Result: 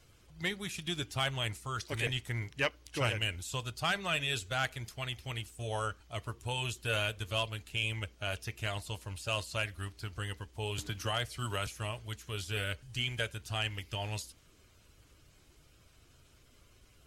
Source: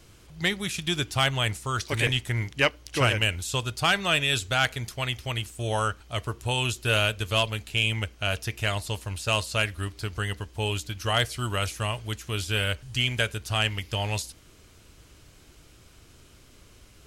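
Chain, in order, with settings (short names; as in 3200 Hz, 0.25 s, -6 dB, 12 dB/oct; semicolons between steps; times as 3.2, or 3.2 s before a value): bin magnitudes rounded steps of 15 dB; 10.78–11.67 three-band squash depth 70%; gain -8.5 dB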